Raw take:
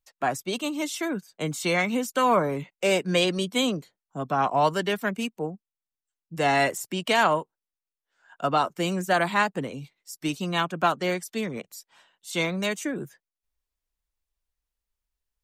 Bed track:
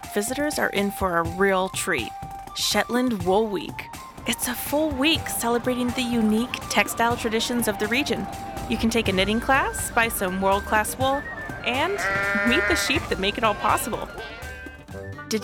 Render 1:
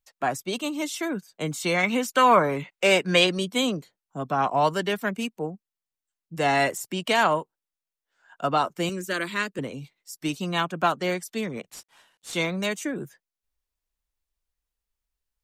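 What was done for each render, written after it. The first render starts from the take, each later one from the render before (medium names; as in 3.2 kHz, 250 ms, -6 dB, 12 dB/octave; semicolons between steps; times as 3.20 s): 1.83–3.27 s: peaking EQ 1.9 kHz +6.5 dB 2.8 oct; 8.89–9.59 s: static phaser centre 320 Hz, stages 4; 11.70–12.37 s: CVSD coder 64 kbps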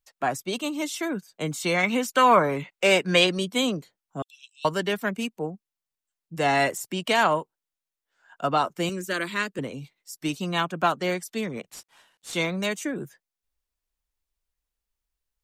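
4.22–4.65 s: rippled Chebyshev high-pass 2.6 kHz, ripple 6 dB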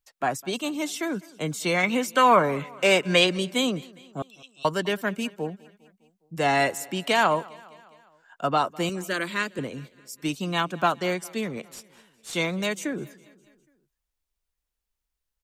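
feedback delay 204 ms, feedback 58%, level -23 dB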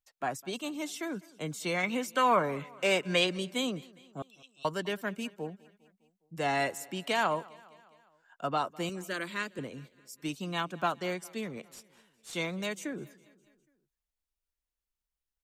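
trim -7.5 dB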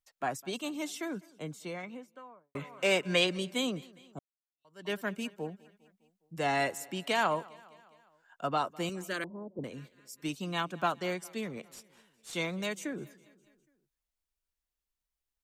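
0.81–2.55 s: studio fade out; 4.19–4.90 s: fade in exponential; 9.24–9.64 s: steep low-pass 850 Hz 48 dB/octave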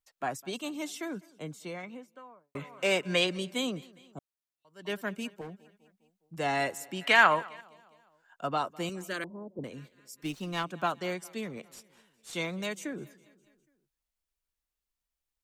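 5.41–6.39 s: hard clipper -39 dBFS; 7.01–7.61 s: peaking EQ 1.8 kHz +13 dB 1.6 oct; 10.23–10.64 s: sliding maximum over 3 samples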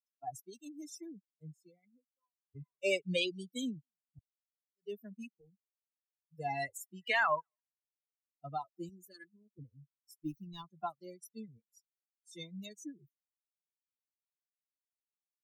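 expander on every frequency bin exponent 3; peak limiter -21 dBFS, peak gain reduction 8.5 dB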